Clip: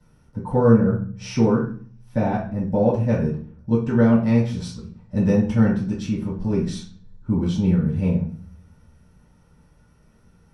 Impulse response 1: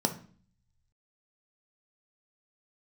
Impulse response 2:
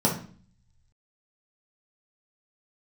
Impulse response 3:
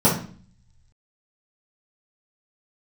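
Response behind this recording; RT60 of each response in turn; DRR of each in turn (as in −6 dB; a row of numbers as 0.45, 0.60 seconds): 3; 0.45, 0.45, 0.45 seconds; 5.5, −3.5, −10.0 decibels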